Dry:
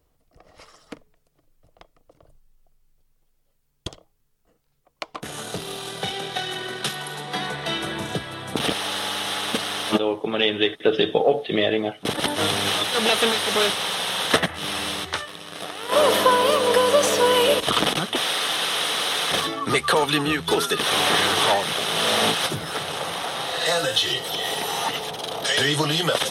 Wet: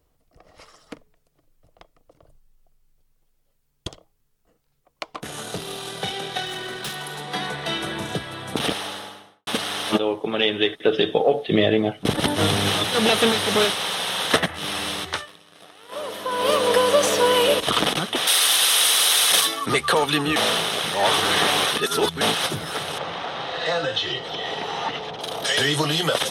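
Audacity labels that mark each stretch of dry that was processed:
6.460000	7.210000	hard clipper -26.5 dBFS
8.620000	9.470000	studio fade out
11.480000	13.650000	bass shelf 260 Hz +10.5 dB
15.150000	16.500000	dip -14 dB, fades 0.33 s quadratic
18.270000	19.660000	RIAA curve recording
20.360000	22.210000	reverse
22.980000	25.210000	distance through air 170 m

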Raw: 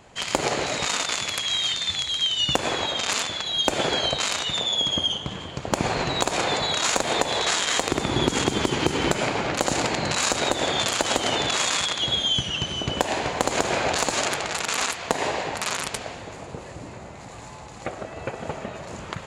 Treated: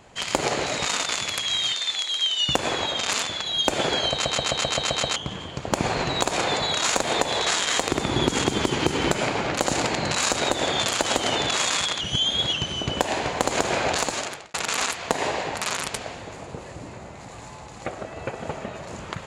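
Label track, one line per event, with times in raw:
1.730000	2.490000	high-pass 410 Hz
4.120000	4.120000	stutter in place 0.13 s, 8 plays
12.010000	12.530000	reverse
13.960000	14.540000	fade out

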